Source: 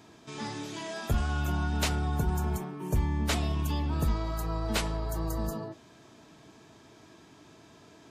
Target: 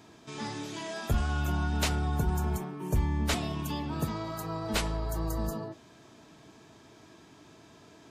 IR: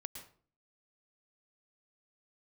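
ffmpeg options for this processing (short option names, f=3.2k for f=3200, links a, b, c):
-filter_complex "[0:a]asettb=1/sr,asplit=3[a][b][c];[a]atrim=end=3.344[d];[b]atrim=start=3.34:end=4.74,asetpts=PTS-STARTPTS,afade=t=in:d=0.004:c=qsin,afade=t=out:st=1.396:d=0.004:c=qsin,highpass=f=100:w=0.5412,highpass=f=100:w=1.3066[e];[c]atrim=start=4.736[f];[d][e]acrossfade=d=0.004:c1=hsin:c2=qsin[g];[g][f]acrossfade=d=0.004:c1=qsin:c2=hsin"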